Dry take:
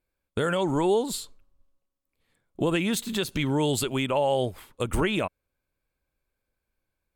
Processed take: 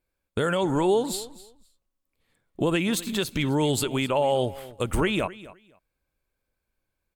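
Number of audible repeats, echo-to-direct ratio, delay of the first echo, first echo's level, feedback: 2, -18.0 dB, 257 ms, -18.0 dB, 18%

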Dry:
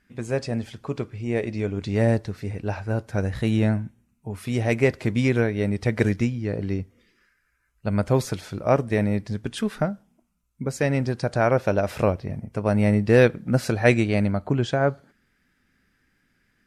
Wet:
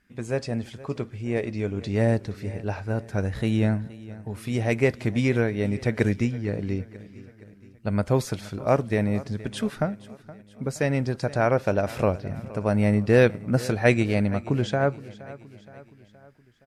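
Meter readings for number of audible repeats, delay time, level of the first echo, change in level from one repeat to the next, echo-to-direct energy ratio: 3, 470 ms, -18.5 dB, -5.5 dB, -17.0 dB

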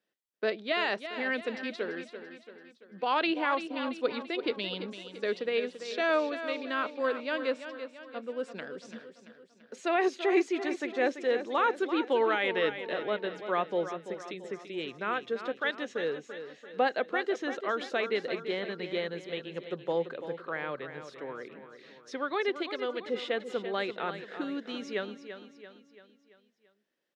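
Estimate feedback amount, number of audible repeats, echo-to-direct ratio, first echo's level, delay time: 50%, 5, -9.0 dB, -10.5 dB, 338 ms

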